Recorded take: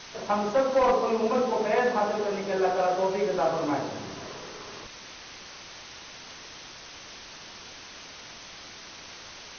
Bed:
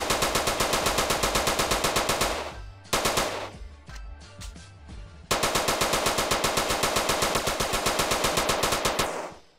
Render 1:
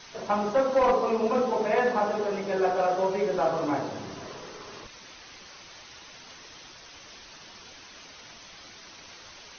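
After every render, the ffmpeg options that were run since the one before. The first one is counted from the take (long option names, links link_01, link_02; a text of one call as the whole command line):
ffmpeg -i in.wav -af "afftdn=noise_reduction=6:noise_floor=-45" out.wav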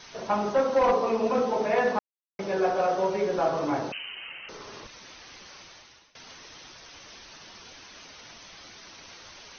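ffmpeg -i in.wav -filter_complex "[0:a]asettb=1/sr,asplit=3[link_01][link_02][link_03];[link_01]atrim=end=3.924[link_04];[link_02]atrim=start=3.92:end=4.49,asetpts=PTS-STARTPTS,afade=type=in:duration=0.004:curve=qsin,afade=type=out:start_time=0.566:duration=0.004:curve=qsin,lowpass=frequency=2700:width_type=q:width=0.5098,lowpass=frequency=2700:width_type=q:width=0.6013,lowpass=frequency=2700:width_type=q:width=0.9,lowpass=frequency=2700:width_type=q:width=2.563,afreqshift=-3200[link_05];[link_03]atrim=start=4.486[link_06];[link_04][link_05]acrossfade=duration=0.004:curve1=hsin:curve2=qsin[link_07];[link_07][link_06]acrossfade=duration=0.004:curve1=qsin:curve2=hsin,asplit=4[link_08][link_09][link_10][link_11];[link_08]atrim=end=1.99,asetpts=PTS-STARTPTS,afade=type=out:start_time=1.986:duration=0.004:curve=hsin[link_12];[link_09]atrim=start=1.99:end=2.39,asetpts=PTS-STARTPTS,volume=0[link_13];[link_10]atrim=start=2.39:end=6.15,asetpts=PTS-STARTPTS,afade=type=in:duration=0.004:curve=hsin,afade=type=out:start_time=3.21:duration=0.55:silence=0.0841395[link_14];[link_11]atrim=start=6.15,asetpts=PTS-STARTPTS,afade=type=in:duration=0.004:curve=hsin:silence=0.0841395[link_15];[link_12][link_13][link_14][link_15]concat=n=4:v=0:a=1" out.wav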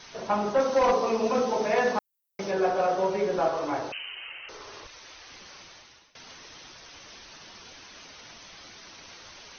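ffmpeg -i in.wav -filter_complex "[0:a]asettb=1/sr,asplit=3[link_01][link_02][link_03];[link_01]atrim=end=0.604[link_04];[link_02]atrim=start=0.6:end=2.51,asetpts=PTS-STARTPTS,afade=type=in:duration=0.004:curve=qsin,afade=type=out:start_time=1.906:duration=0.004:curve=qsin,aemphasis=mode=production:type=50fm[link_05];[link_03]atrim=start=2.506[link_06];[link_04][link_05]acrossfade=duration=0.004:curve1=hsin:curve2=qsin[link_07];[link_07][link_06]acrossfade=duration=0.004:curve1=qsin:curve2=hsin,asettb=1/sr,asplit=3[link_08][link_09][link_10];[link_08]atrim=end=3.484[link_11];[link_09]atrim=start=3.48:end=5.3,asetpts=PTS-STARTPTS,afade=type=in:duration=0.004:curve=qsin,afade=type=out:start_time=1.816:duration=0.004:curve=qsin,equalizer=frequency=190:width=1.5:gain=-13.5[link_12];[link_10]atrim=start=5.296[link_13];[link_11][link_12]acrossfade=duration=0.004:curve1=hsin:curve2=qsin[link_14];[link_14][link_13]acrossfade=duration=0.004:curve1=qsin:curve2=hsin" out.wav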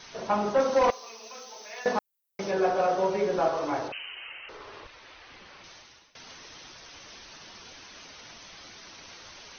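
ffmpeg -i in.wav -filter_complex "[0:a]asettb=1/sr,asplit=3[link_01][link_02][link_03];[link_01]atrim=end=0.904[link_04];[link_02]atrim=start=0.9:end=1.86,asetpts=PTS-STARTPTS,afade=type=in:duration=0.004:curve=qsin,afade=type=out:start_time=0.956:duration=0.004:curve=qsin,aderivative[link_05];[link_03]atrim=start=1.856[link_06];[link_04][link_05]acrossfade=duration=0.004:curve1=hsin:curve2=qsin[link_07];[link_07][link_06]acrossfade=duration=0.004:curve1=qsin:curve2=hsin,asettb=1/sr,asplit=3[link_08][link_09][link_10];[link_08]atrim=end=3.884[link_11];[link_09]atrim=start=3.88:end=5.64,asetpts=PTS-STARTPTS,afade=type=in:duration=0.004:curve=qsin,afade=type=out:start_time=1.756:duration=0.004:curve=qsin,lowpass=3300[link_12];[link_10]atrim=start=5.636[link_13];[link_11][link_12]acrossfade=duration=0.004:curve1=hsin:curve2=qsin[link_14];[link_14][link_13]acrossfade=duration=0.004:curve1=qsin:curve2=hsin" out.wav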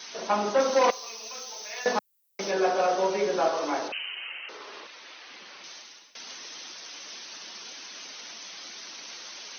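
ffmpeg -i in.wav -af "highpass=frequency=200:width=0.5412,highpass=frequency=200:width=1.3066,highshelf=frequency=2800:gain=9.5" out.wav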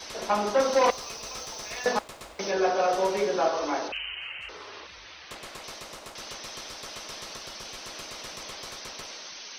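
ffmpeg -i in.wav -i bed.wav -filter_complex "[1:a]volume=-19dB[link_01];[0:a][link_01]amix=inputs=2:normalize=0" out.wav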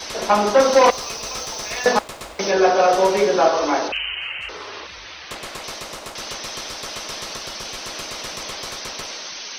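ffmpeg -i in.wav -af "volume=9dB,alimiter=limit=-3dB:level=0:latency=1" out.wav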